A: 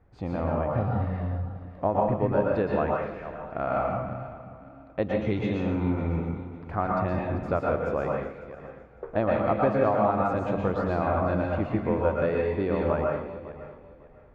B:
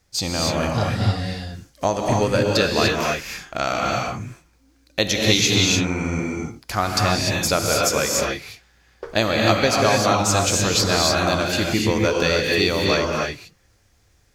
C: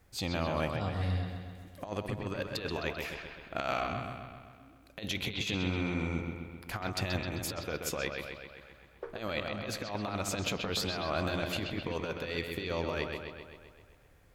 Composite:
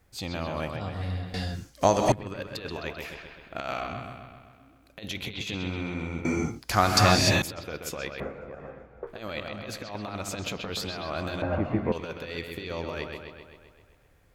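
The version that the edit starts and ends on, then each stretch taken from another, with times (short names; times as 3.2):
C
1.34–2.12 from B
6.25–7.42 from B
8.2–9.07 from A
11.42–11.92 from A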